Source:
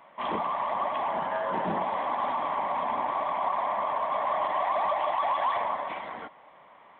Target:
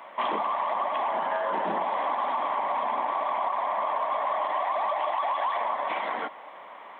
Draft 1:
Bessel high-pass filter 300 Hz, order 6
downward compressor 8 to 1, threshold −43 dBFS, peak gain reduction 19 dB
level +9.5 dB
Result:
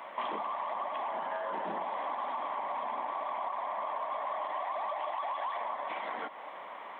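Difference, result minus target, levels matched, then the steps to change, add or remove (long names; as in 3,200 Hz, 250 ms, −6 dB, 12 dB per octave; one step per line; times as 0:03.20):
downward compressor: peak gain reduction +8 dB
change: downward compressor 8 to 1, threshold −34 dBFS, peak gain reduction 11 dB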